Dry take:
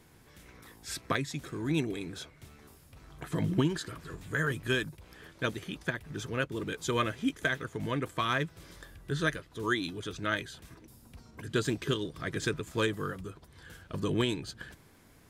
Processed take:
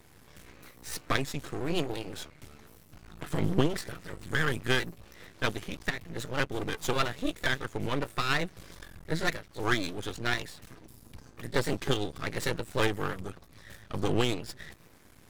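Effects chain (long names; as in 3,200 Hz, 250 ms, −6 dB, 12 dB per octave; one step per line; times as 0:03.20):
pitch shifter gated in a rhythm +2 semitones, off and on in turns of 533 ms
half-wave rectification
level +6 dB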